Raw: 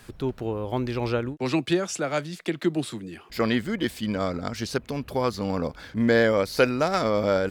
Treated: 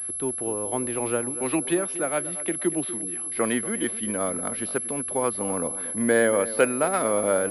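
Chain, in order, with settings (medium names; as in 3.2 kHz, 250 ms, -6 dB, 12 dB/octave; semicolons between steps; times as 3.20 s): three-band isolator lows -13 dB, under 200 Hz, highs -19 dB, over 3.4 kHz; tape echo 237 ms, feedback 40%, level -13.5 dB, low-pass 2 kHz; class-D stage that switches slowly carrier 11 kHz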